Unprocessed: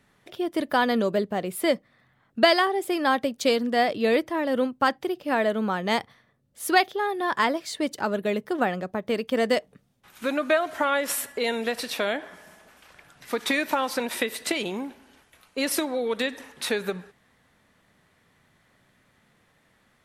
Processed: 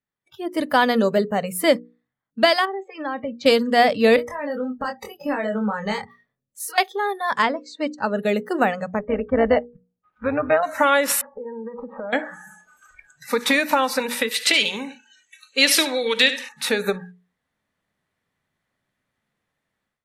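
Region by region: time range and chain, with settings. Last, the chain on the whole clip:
2.65–3.46 s: compression 4:1, threshold -24 dBFS + distance through air 230 m + feedback comb 77 Hz, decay 0.17 s, mix 40%
4.16–6.78 s: compression 10:1, threshold -32 dBFS + doubling 24 ms -4.5 dB
7.42–8.16 s: distance through air 89 m + de-hum 89.99 Hz, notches 6 + upward expansion, over -36 dBFS
8.99–10.63 s: low-pass 1.7 kHz + AM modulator 170 Hz, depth 45%
11.21–12.13 s: low-pass 1.2 kHz 24 dB/octave + compression 5:1, threshold -37 dBFS
14.31–16.49 s: frequency weighting D + delay 73 ms -12.5 dB
whole clip: spectral noise reduction 25 dB; hum notches 60/120/180/240/300/360/420/480 Hz; level rider gain up to 14 dB; trim -3 dB

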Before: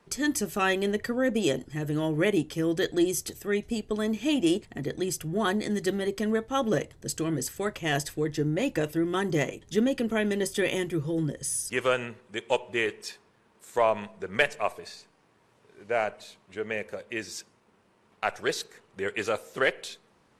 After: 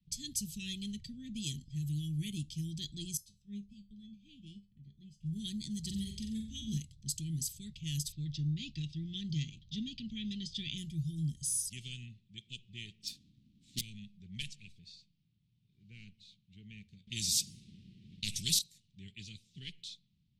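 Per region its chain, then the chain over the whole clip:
3.17–5.23 s: bass shelf 250 Hz +6.5 dB + feedback comb 200 Hz, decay 0.33 s, mix 80% + upward expansion, over -42 dBFS
5.79–6.77 s: peaking EQ 73 Hz +13 dB 0.7 oct + flutter echo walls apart 7.8 m, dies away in 0.48 s
8.12–10.78 s: low-pass 4.6 kHz 24 dB/octave + treble shelf 2.9 kHz +7 dB
13.03–13.81 s: square wave that keeps the level + small resonant body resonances 280/700/1200 Hz, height 17 dB, ringing for 50 ms
17.07–18.59 s: peaking EQ 490 Hz +13.5 dB 2 oct + spectrum-flattening compressor 2:1
whole clip: Chebyshev band-stop 170–3600 Hz, order 3; level-controlled noise filter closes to 2 kHz, open at -31 dBFS; high-order bell 1 kHz -11 dB; trim -2.5 dB

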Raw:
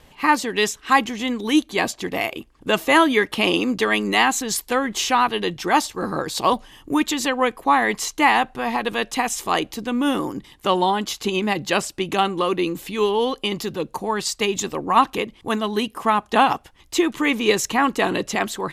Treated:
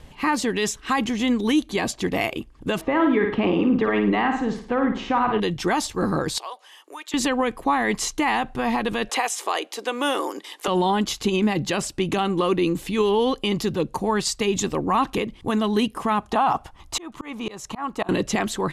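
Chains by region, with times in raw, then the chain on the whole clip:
2.81–5.40 s: low-pass 1.6 kHz + flutter echo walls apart 9.3 m, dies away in 0.44 s
6.38–7.14 s: Bessel high-pass 740 Hz, order 8 + compression 2:1, threshold -43 dBFS
9.09–10.68 s: high-pass 420 Hz 24 dB/octave + three bands compressed up and down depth 70%
16.31–18.09 s: high-order bell 920 Hz +8.5 dB 1.3 oct + slow attack 667 ms
whole clip: low-pass 12 kHz 24 dB/octave; bass shelf 240 Hz +9 dB; peak limiter -11.5 dBFS

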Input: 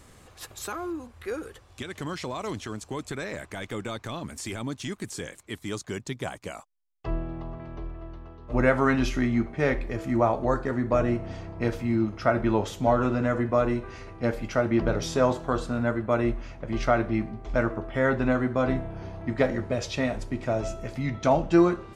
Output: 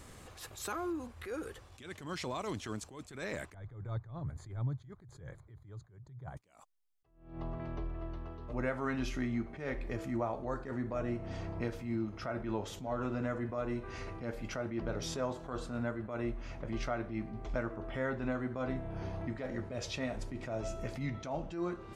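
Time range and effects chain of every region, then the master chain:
3.54–6.37 s: boxcar filter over 16 samples + resonant low shelf 170 Hz +9 dB, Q 3
whole clip: compression 3:1, threshold -35 dBFS; attacks held to a fixed rise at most 100 dB/s

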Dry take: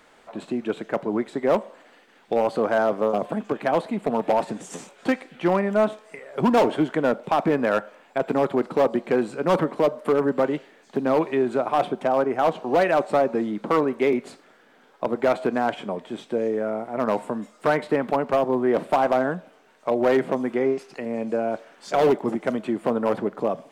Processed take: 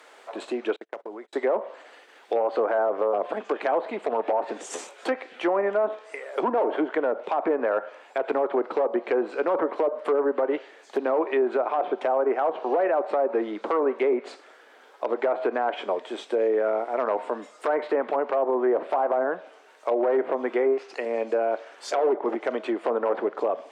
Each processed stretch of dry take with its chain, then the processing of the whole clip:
0.76–1.33 s: gate -33 dBFS, range -40 dB + compression 10:1, threshold -34 dBFS
whole clip: low-pass that closes with the level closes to 1.2 kHz, closed at -16.5 dBFS; high-pass 360 Hz 24 dB/octave; peak limiter -19.5 dBFS; trim +4 dB

